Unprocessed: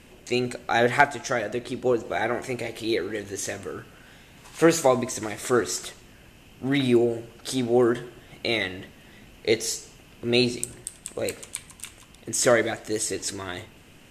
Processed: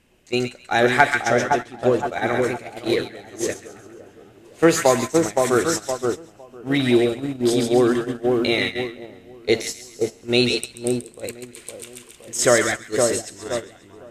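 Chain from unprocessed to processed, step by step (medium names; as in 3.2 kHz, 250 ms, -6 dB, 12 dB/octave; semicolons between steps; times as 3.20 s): two-band feedback delay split 1.2 kHz, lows 514 ms, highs 135 ms, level -3 dB; gate -25 dBFS, range -13 dB; 11.57–12.87 s: tape noise reduction on one side only encoder only; trim +3 dB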